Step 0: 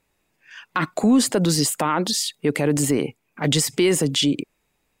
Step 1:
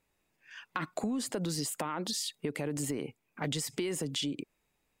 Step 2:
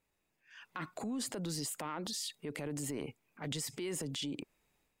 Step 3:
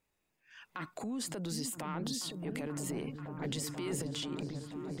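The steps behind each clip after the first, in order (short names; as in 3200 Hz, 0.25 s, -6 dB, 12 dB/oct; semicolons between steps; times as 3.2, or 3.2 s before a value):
compressor, threshold -24 dBFS, peak gain reduction 11 dB; gain -7 dB
transient shaper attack -5 dB, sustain +6 dB; gain -4.5 dB
repeats that get brighter 0.485 s, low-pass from 200 Hz, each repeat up 1 oct, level 0 dB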